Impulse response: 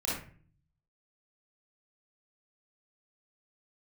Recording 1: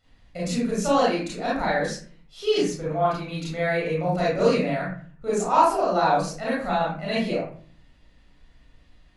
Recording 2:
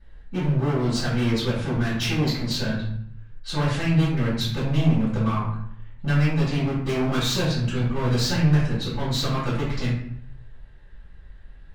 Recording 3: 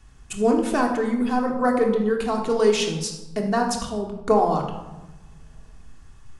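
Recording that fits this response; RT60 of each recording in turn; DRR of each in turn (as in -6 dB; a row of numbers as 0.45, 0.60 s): 1; 0.45, 0.65, 1.1 s; -7.0, -12.0, 0.5 dB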